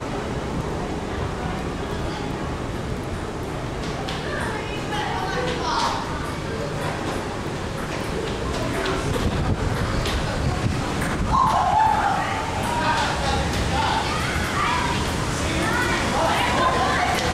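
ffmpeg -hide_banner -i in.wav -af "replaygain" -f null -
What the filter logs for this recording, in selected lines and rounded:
track_gain = +5.0 dB
track_peak = 0.313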